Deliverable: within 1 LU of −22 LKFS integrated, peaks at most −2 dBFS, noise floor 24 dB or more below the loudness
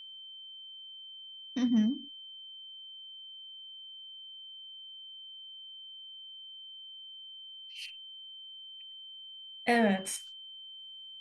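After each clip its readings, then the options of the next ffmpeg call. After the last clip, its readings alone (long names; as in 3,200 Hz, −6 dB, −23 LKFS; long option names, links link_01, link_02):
interfering tone 3,100 Hz; level of the tone −45 dBFS; integrated loudness −37.5 LKFS; sample peak −14.5 dBFS; target loudness −22.0 LKFS
→ -af "bandreject=frequency=3100:width=30"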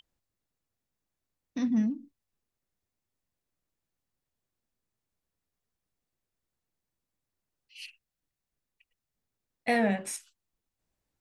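interfering tone none found; integrated loudness −30.0 LKFS; sample peak −15.0 dBFS; target loudness −22.0 LKFS
→ -af "volume=8dB"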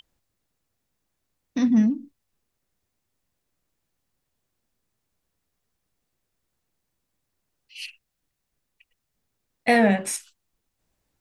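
integrated loudness −22.5 LKFS; sample peak −7.0 dBFS; background noise floor −80 dBFS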